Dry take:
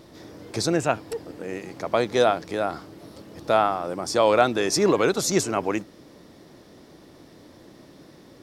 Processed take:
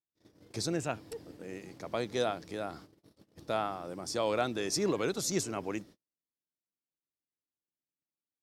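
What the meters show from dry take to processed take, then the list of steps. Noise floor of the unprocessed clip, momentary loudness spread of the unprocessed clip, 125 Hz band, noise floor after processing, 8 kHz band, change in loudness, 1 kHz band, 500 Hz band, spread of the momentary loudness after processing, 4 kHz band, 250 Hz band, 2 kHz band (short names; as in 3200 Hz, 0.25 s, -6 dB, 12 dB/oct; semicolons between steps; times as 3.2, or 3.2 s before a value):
-50 dBFS, 15 LU, -8.5 dB, under -85 dBFS, -8.0 dB, -11.0 dB, -13.0 dB, -12.0 dB, 14 LU, -8.5 dB, -9.5 dB, -11.5 dB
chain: bell 920 Hz -6 dB 2.7 oct; gate -43 dBFS, range -48 dB; gain -7.5 dB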